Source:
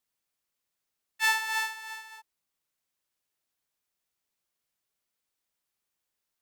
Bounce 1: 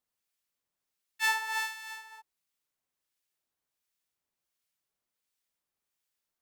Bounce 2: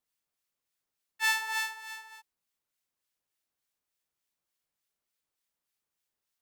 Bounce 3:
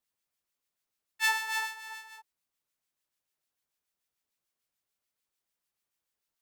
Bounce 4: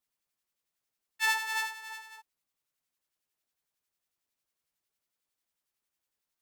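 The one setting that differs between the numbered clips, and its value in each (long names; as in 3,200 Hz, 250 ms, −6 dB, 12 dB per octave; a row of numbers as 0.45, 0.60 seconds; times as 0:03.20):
two-band tremolo in antiphase, speed: 1.4, 3.4, 6.8, 11 Hertz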